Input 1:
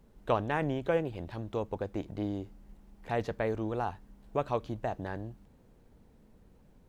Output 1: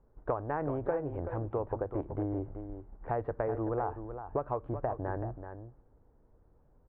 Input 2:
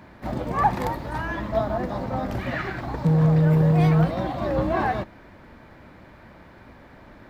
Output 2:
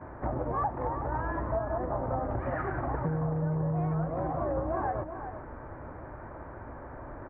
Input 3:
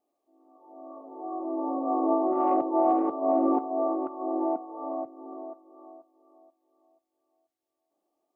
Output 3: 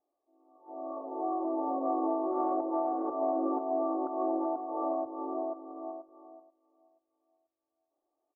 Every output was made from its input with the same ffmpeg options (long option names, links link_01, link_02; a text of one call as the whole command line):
ffmpeg -i in.wav -filter_complex "[0:a]agate=range=-9dB:threshold=-53dB:ratio=16:detection=peak,lowpass=frequency=1400:width=0.5412,lowpass=frequency=1400:width=1.3066,equalizer=frequency=200:width=2.8:gain=-13.5,acompressor=threshold=-35dB:ratio=6,asplit=2[link_01][link_02];[link_02]aecho=0:1:380:0.335[link_03];[link_01][link_03]amix=inputs=2:normalize=0,volume=6dB" out.wav